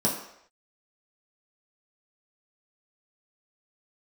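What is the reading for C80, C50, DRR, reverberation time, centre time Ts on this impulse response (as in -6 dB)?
8.0 dB, 6.0 dB, -4.5 dB, not exponential, 34 ms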